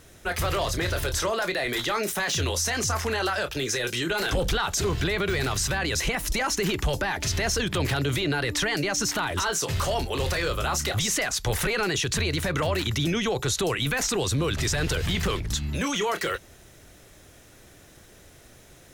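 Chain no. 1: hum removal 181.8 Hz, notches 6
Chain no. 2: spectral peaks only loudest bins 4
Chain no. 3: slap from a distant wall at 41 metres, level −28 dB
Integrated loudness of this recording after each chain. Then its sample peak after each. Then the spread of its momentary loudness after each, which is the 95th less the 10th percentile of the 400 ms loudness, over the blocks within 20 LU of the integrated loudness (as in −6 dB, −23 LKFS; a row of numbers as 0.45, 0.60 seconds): −26.0, −31.5, −26.0 LKFS; −16.0, −17.5, −17.0 dBFS; 2, 4, 2 LU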